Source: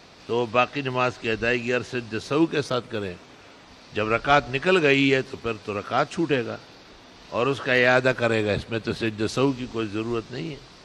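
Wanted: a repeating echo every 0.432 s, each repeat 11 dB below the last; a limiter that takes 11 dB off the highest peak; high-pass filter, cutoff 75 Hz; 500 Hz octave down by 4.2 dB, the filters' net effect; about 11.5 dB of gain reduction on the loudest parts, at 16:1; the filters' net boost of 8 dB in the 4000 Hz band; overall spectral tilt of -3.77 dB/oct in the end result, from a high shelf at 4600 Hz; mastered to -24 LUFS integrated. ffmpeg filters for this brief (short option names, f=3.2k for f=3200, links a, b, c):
-af "highpass=75,equalizer=f=500:t=o:g=-5.5,equalizer=f=4k:t=o:g=8.5,highshelf=f=4.6k:g=4.5,acompressor=threshold=-24dB:ratio=16,alimiter=limit=-21dB:level=0:latency=1,aecho=1:1:432|864|1296:0.282|0.0789|0.0221,volume=9dB"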